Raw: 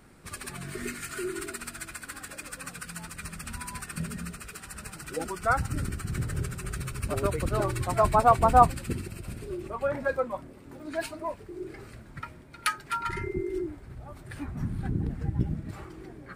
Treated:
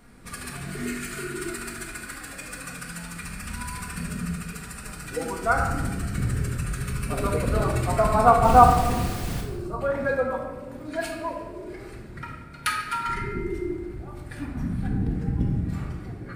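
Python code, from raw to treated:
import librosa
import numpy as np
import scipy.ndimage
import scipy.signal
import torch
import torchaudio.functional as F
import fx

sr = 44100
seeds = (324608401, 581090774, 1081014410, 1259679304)

y = fx.spec_erase(x, sr, start_s=9.08, length_s=0.73, low_hz=1600.0, high_hz=3700.0)
y = fx.dmg_noise_colour(y, sr, seeds[0], colour='pink', level_db=-38.0, at=(8.43, 9.4), fade=0.02)
y = fx.room_shoebox(y, sr, seeds[1], volume_m3=1000.0, walls='mixed', distance_m=1.8)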